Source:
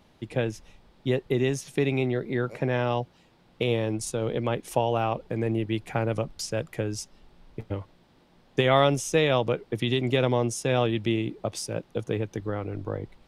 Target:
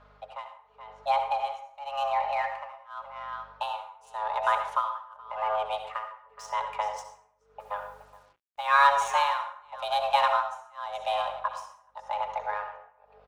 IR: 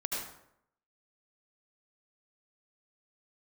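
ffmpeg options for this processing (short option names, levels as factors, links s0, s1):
-filter_complex "[0:a]equalizer=f=860:t=o:w=1.8:g=10,bandreject=f=60:t=h:w=6,bandreject=f=120:t=h:w=6,aecho=1:1:4.9:0.52,aecho=1:1:422:0.188,adynamicsmooth=sensitivity=5.5:basefreq=4100,afreqshift=420,aeval=exprs='val(0)+0.002*(sin(2*PI*50*n/s)+sin(2*PI*2*50*n/s)/2+sin(2*PI*3*50*n/s)/3+sin(2*PI*4*50*n/s)/4+sin(2*PI*5*50*n/s)/5)':c=same,tremolo=f=0.89:d=1,asplit=2[s0][s1];[1:a]atrim=start_sample=2205,asetrate=52920,aresample=44100[s2];[s1][s2]afir=irnorm=-1:irlink=0,volume=0.531[s3];[s0][s3]amix=inputs=2:normalize=0,asplit=3[s4][s5][s6];[s4]afade=t=out:st=7.59:d=0.02[s7];[s5]acrusher=bits=8:mix=0:aa=0.5,afade=t=in:st=7.59:d=0.02,afade=t=out:st=8.81:d=0.02[s8];[s6]afade=t=in:st=8.81:d=0.02[s9];[s7][s8][s9]amix=inputs=3:normalize=0,volume=0.422"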